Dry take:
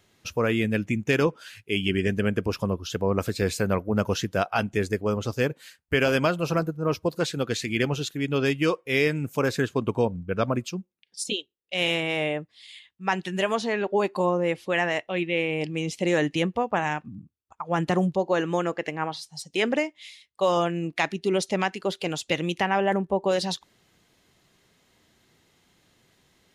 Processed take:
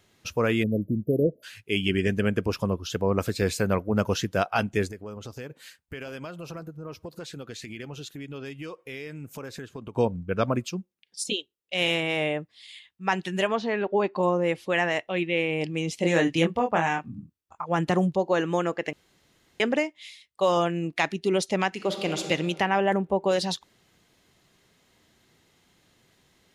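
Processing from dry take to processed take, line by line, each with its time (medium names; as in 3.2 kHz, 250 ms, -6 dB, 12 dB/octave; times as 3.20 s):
0.63–1.43 s: spectral selection erased 670–11000 Hz
4.88–9.96 s: compression 4:1, threshold -37 dBFS
13.47–14.23 s: distance through air 160 m
16.00–17.66 s: doubling 24 ms -4 dB
18.93–19.60 s: room tone
21.68–22.23 s: reverb throw, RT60 1.8 s, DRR 5 dB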